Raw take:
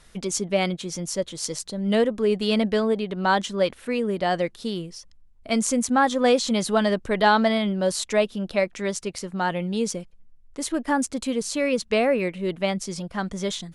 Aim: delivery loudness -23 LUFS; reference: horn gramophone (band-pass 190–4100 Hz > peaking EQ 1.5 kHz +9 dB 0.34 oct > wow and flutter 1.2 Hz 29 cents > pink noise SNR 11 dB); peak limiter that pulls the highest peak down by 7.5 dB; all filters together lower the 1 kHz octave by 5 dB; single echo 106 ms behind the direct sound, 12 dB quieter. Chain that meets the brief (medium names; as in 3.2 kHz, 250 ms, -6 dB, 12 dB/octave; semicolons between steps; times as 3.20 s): peaking EQ 1 kHz -8.5 dB; peak limiter -15.5 dBFS; band-pass 190–4100 Hz; peaking EQ 1.5 kHz +9 dB 0.34 oct; delay 106 ms -12 dB; wow and flutter 1.2 Hz 29 cents; pink noise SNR 11 dB; trim +4 dB